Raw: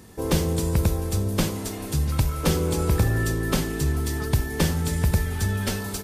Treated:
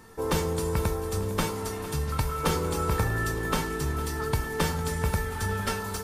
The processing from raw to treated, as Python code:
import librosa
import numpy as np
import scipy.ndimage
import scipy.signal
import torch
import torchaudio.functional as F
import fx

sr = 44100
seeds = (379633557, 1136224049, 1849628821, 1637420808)

y = fx.peak_eq(x, sr, hz=1200.0, db=9.5, octaves=1.3)
y = fx.comb_fb(y, sr, f0_hz=450.0, decay_s=0.21, harmonics='all', damping=0.0, mix_pct=80)
y = fx.echo_feedback(y, sr, ms=455, feedback_pct=60, wet_db=-15)
y = y * 10.0 ** (6.0 / 20.0)